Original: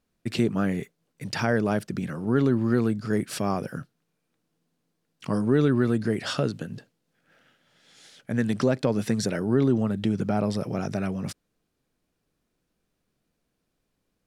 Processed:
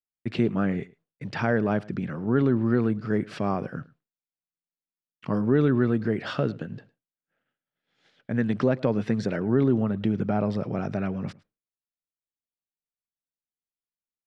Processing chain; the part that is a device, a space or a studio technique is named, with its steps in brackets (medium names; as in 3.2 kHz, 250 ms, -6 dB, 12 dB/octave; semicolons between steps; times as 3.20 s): hearing-loss simulation (low-pass 2.8 kHz 12 dB/octave; expander -50 dBFS); delay 107 ms -22.5 dB